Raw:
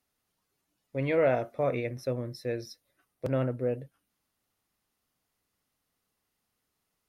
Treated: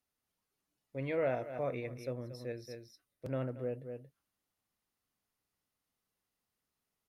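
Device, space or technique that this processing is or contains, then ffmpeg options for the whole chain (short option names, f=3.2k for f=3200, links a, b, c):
ducked delay: -filter_complex "[0:a]asettb=1/sr,asplit=3[a][b][c];[a]atrim=end=2.524[d];[b]atrim=start=2.52:end=3.27,asetpts=PTS-STARTPTS,afade=t=in:d=0.004:c=qsin,afade=t=out:st=0.746:d=0.004:c=qsin,equalizer=f=900:w=0.46:g=-5.5[e];[c]atrim=start=3.266[f];[d][e]acrossfade=d=0.004:c1=hsin:c2=qsin[g];[g][f]acrossfade=d=0.004:c1=qsin:c2=hsin,asplit=3[h][i][j];[i]adelay=229,volume=-5.5dB[k];[j]apad=whole_len=322730[l];[k][l]sidechaincompress=threshold=-43dB:ratio=5:attack=16:release=156[m];[h][m]amix=inputs=2:normalize=0,volume=-8dB"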